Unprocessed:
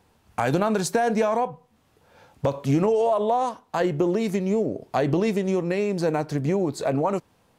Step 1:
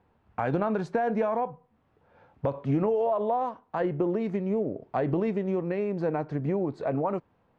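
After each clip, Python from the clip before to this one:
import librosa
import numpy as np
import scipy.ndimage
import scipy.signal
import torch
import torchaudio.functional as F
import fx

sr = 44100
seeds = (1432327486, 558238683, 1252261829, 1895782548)

y = scipy.signal.sosfilt(scipy.signal.butter(2, 1900.0, 'lowpass', fs=sr, output='sos'), x)
y = y * 10.0 ** (-4.5 / 20.0)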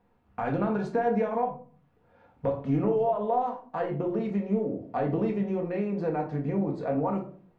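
y = fx.room_shoebox(x, sr, seeds[0], volume_m3=370.0, walls='furnished', distance_m=1.8)
y = y * 10.0 ** (-4.0 / 20.0)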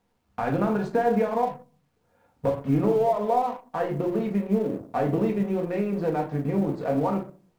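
y = fx.law_mismatch(x, sr, coded='A')
y = y * 10.0 ** (4.0 / 20.0)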